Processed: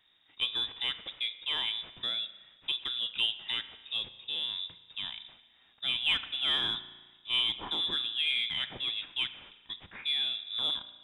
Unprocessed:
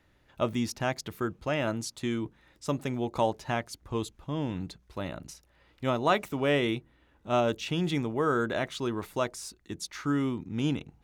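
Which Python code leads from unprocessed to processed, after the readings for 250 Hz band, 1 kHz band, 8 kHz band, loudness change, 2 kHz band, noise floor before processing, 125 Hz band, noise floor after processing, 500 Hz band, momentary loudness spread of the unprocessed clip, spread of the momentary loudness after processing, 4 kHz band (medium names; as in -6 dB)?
-23.0 dB, -14.0 dB, under -15 dB, 0.0 dB, -1.0 dB, -66 dBFS, -22.5 dB, -64 dBFS, -23.5 dB, 11 LU, 11 LU, +13.0 dB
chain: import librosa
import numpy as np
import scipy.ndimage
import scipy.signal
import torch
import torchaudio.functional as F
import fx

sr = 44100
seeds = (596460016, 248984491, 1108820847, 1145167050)

p1 = fx.cvsd(x, sr, bps=64000)
p2 = fx.freq_invert(p1, sr, carrier_hz=3700)
p3 = 10.0 ** (-24.5 / 20.0) * np.tanh(p2 / 10.0 ** (-24.5 / 20.0))
p4 = p2 + F.gain(torch.from_numpy(p3), -11.5).numpy()
p5 = fx.rev_spring(p4, sr, rt60_s=1.3, pass_ms=(35,), chirp_ms=50, drr_db=12.0)
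y = F.gain(torch.from_numpy(p5), -5.0).numpy()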